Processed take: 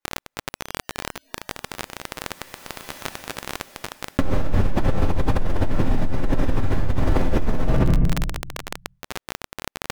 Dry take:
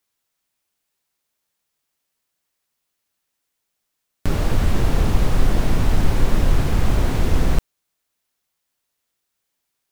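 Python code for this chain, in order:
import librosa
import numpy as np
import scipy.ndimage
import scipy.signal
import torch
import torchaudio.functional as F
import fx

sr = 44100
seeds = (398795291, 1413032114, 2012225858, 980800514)

y = fx.doppler_pass(x, sr, speed_mps=13, closest_m=4.5, pass_at_s=2.92)
y = fx.low_shelf(y, sr, hz=110.0, db=-9.5)
y = fx.comb_fb(y, sr, f0_hz=91.0, decay_s=0.25, harmonics='all', damping=0.0, mix_pct=50)
y = fx.echo_feedback(y, sr, ms=66, feedback_pct=40, wet_db=-11.5)
y = fx.room_shoebox(y, sr, seeds[0], volume_m3=150.0, walls='mixed', distance_m=2.3)
y = fx.noise_reduce_blind(y, sr, reduce_db=24)
y = fx.dmg_crackle(y, sr, seeds[1], per_s=28.0, level_db=-41.0)
y = fx.high_shelf(y, sr, hz=2900.0, db=-11.5)
y = fx.env_flatten(y, sr, amount_pct=100)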